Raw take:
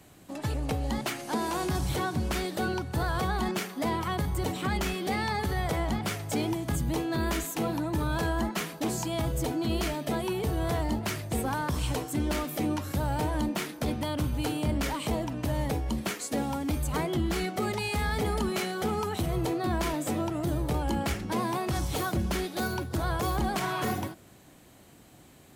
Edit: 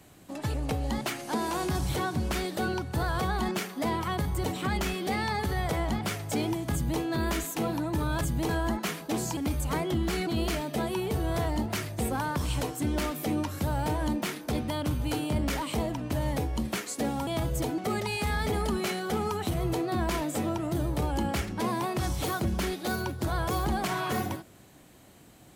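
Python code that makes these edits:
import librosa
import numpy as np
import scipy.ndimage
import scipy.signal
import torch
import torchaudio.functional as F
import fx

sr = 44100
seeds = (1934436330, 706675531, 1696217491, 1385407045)

y = fx.edit(x, sr, fx.duplicate(start_s=6.72, length_s=0.28, to_s=8.21),
    fx.swap(start_s=9.09, length_s=0.51, other_s=16.6, other_length_s=0.9), tone=tone)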